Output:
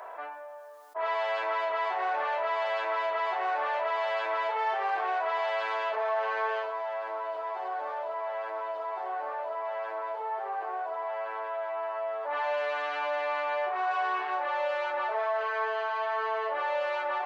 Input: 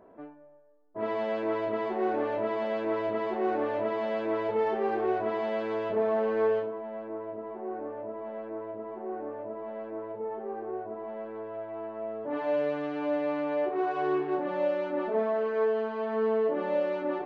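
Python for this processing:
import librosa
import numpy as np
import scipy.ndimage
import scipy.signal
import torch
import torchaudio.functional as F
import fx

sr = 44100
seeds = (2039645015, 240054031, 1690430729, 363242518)

y = scipy.signal.sosfilt(scipy.signal.butter(4, 790.0, 'highpass', fs=sr, output='sos'), x)
y = fx.echo_wet_highpass(y, sr, ms=1090, feedback_pct=78, hz=3400.0, wet_db=-18)
y = fx.env_flatten(y, sr, amount_pct=50)
y = y * 10.0 ** (5.0 / 20.0)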